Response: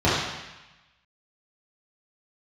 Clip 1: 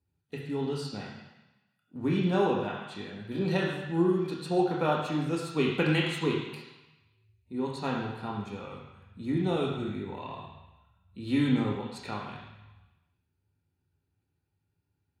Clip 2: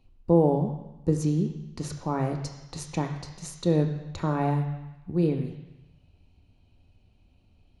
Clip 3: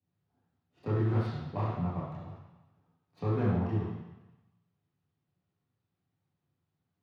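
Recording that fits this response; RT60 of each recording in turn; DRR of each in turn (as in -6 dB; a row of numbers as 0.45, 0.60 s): 3; 1.0, 1.0, 1.0 s; -1.5, 5.0, -10.5 dB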